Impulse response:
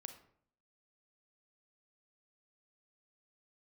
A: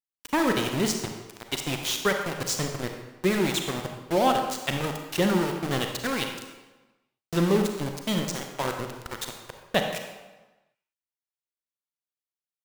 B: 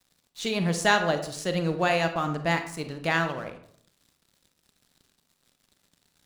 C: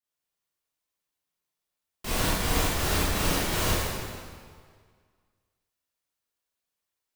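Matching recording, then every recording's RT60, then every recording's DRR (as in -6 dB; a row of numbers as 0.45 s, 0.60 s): B; 1.2 s, 0.60 s, 1.9 s; 3.5 dB, 7.5 dB, -11.0 dB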